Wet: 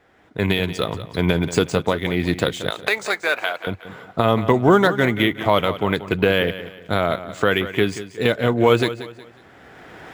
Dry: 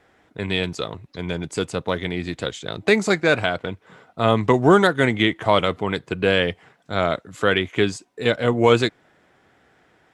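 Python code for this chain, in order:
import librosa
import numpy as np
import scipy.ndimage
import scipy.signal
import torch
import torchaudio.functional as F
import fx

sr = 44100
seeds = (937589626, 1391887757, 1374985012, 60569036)

y = fx.recorder_agc(x, sr, target_db=-6.0, rise_db_per_s=16.0, max_gain_db=30)
y = fx.highpass(y, sr, hz=720.0, slope=12, at=(2.7, 3.67))
y = fx.echo_feedback(y, sr, ms=182, feedback_pct=35, wet_db=-13.5)
y = np.interp(np.arange(len(y)), np.arange(len(y))[::3], y[::3])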